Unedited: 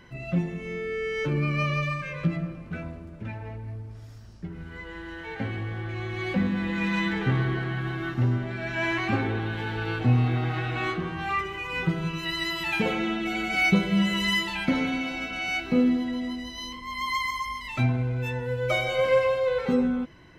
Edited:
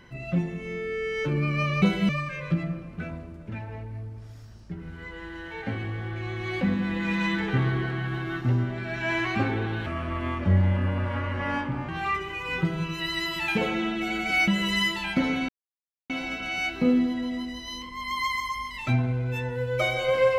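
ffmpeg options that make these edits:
-filter_complex "[0:a]asplit=7[s0][s1][s2][s3][s4][s5][s6];[s0]atrim=end=1.822[s7];[s1]atrim=start=13.718:end=13.992[s8];[s2]atrim=start=1.818:end=9.594[s9];[s3]atrim=start=9.59:end=11.13,asetpts=PTS-STARTPTS,asetrate=33516,aresample=44100[s10];[s4]atrim=start=11.126:end=13.722[s11];[s5]atrim=start=13.988:end=15,asetpts=PTS-STARTPTS,afade=t=out:st=1.008:d=0.004:c=hsin,apad=pad_dur=0.61[s12];[s6]atrim=start=15,asetpts=PTS-STARTPTS,afade=t=in:d=0.004:c=hsin[s13];[s7][s8]acrossfade=d=0.004:c1=hsin:c2=hsin[s14];[s14][s9]acrossfade=d=0.004:c1=hsin:c2=hsin[s15];[s15][s10]acrossfade=d=0.004:c1=hsin:c2=hsin[s16];[s16][s11]acrossfade=d=0.004:c1=hsin:c2=hsin[s17];[s12][s13]concat=n=2:v=0:a=1[s18];[s17][s18]acrossfade=d=0.004:c1=hsin:c2=hsin"

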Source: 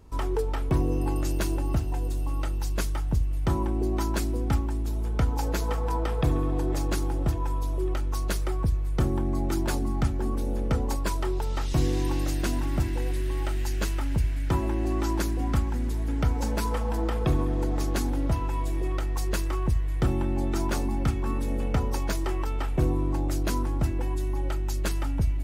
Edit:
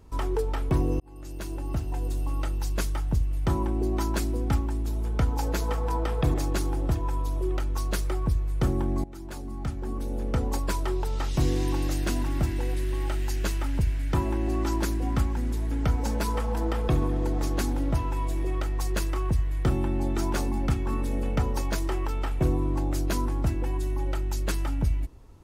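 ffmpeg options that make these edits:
-filter_complex "[0:a]asplit=4[s0][s1][s2][s3];[s0]atrim=end=1,asetpts=PTS-STARTPTS,afade=t=out:st=0.996:d=0.004:c=hsin[s4];[s1]atrim=start=1:end=6.342,asetpts=PTS-STARTPTS,afade=t=in:d=1.12[s5];[s2]atrim=start=6.708:end=9.41,asetpts=PTS-STARTPTS,afade=t=out:st=2.698:d=0.004:c=hsin:silence=0.112202[s6];[s3]atrim=start=9.41,asetpts=PTS-STARTPTS,afade=t=in:d=1.5:silence=0.112202[s7];[s4][s5]concat=n=2:v=0:a=1[s8];[s6][s7]concat=n=2:v=0:a=1[s9];[s8][s9]acrossfade=d=0.004:c1=hsin:c2=hsin"

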